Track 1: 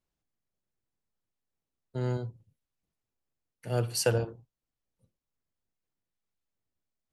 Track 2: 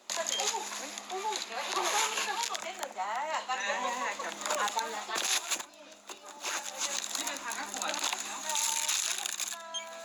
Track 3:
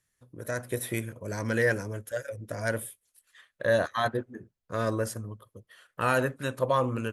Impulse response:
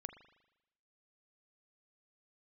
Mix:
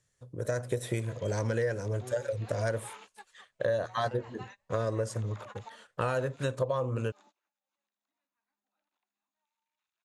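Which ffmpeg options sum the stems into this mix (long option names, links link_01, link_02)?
-filter_complex "[0:a]adelay=50,volume=-14.5dB[link_01];[1:a]acrossover=split=2700[link_02][link_03];[link_03]acompressor=threshold=-40dB:ratio=4:attack=1:release=60[link_04];[link_02][link_04]amix=inputs=2:normalize=0,equalizer=frequency=170:width_type=o:width=0.94:gain=10,adelay=900,volume=-14.5dB[link_05];[2:a]equalizer=frequency=125:width_type=o:width=1:gain=7,equalizer=frequency=250:width_type=o:width=1:gain=-4,equalizer=frequency=500:width_type=o:width=1:gain=7,equalizer=frequency=2000:width_type=o:width=1:gain=-3,equalizer=frequency=8000:width_type=o:width=1:gain=10,volume=1.5dB,asplit=2[link_06][link_07];[link_07]apad=whole_len=482800[link_08];[link_05][link_08]sidechaingate=range=-37dB:threshold=-51dB:ratio=16:detection=peak[link_09];[link_01][link_09][link_06]amix=inputs=3:normalize=0,lowpass=5500,acompressor=threshold=-27dB:ratio=6"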